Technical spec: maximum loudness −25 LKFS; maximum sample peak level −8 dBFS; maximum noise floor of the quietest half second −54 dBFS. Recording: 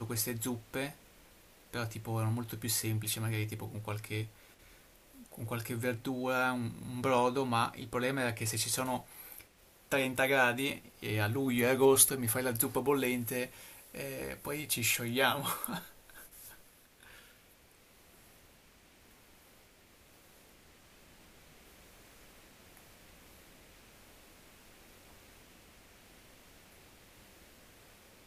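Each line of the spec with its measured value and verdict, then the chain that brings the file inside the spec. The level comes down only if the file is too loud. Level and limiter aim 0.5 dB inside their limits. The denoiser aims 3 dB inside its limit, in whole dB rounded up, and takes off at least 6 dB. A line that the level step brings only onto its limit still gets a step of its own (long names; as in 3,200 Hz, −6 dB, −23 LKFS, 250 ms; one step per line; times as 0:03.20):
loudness −32.5 LKFS: in spec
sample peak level −9.5 dBFS: in spec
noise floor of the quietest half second −62 dBFS: in spec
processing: no processing needed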